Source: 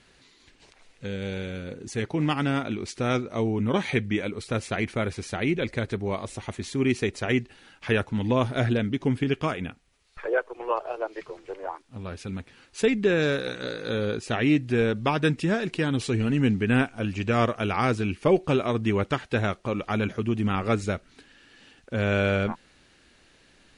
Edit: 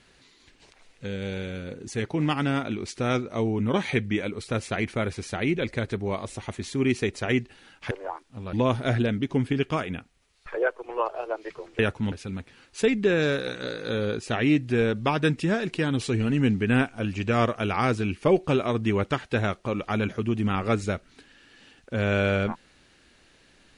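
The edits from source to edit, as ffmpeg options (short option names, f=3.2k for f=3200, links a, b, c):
-filter_complex "[0:a]asplit=5[a][b][c][d][e];[a]atrim=end=7.912[f];[b]atrim=start=11.498:end=12.122[g];[c]atrim=start=8.238:end=11.502[h];[d]atrim=start=7.908:end=8.242[i];[e]atrim=start=12.118[j];[f][g]acrossfade=d=0.004:c1=hsin:c2=hsin[k];[k][h]acrossfade=d=0.004:c1=hsin:c2=hsin[l];[l][i]acrossfade=d=0.004:c1=hsin:c2=hsin[m];[m][j]acrossfade=d=0.004:c1=hsin:c2=hsin"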